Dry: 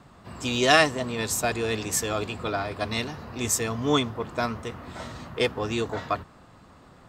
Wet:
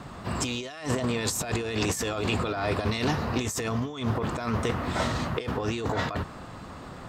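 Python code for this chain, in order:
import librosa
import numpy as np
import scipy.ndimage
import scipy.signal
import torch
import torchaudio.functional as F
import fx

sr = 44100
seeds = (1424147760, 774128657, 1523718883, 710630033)

y = fx.over_compress(x, sr, threshold_db=-34.0, ratio=-1.0)
y = fx.doppler_dist(y, sr, depth_ms=0.15)
y = y * 10.0 ** (4.5 / 20.0)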